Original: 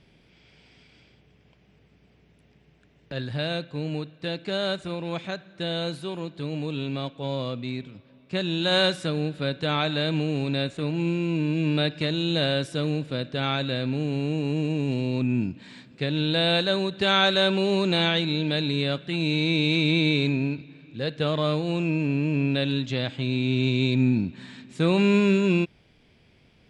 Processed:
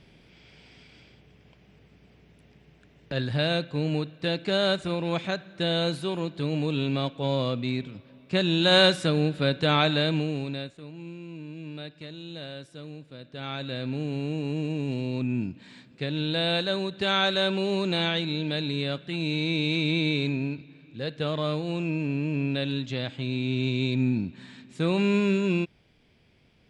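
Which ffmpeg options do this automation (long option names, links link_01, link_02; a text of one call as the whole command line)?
ffmpeg -i in.wav -af "volume=14.5dB,afade=type=out:start_time=9.85:duration=0.46:silence=0.501187,afade=type=out:start_time=10.31:duration=0.49:silence=0.251189,afade=type=in:start_time=13.19:duration=0.75:silence=0.266073" out.wav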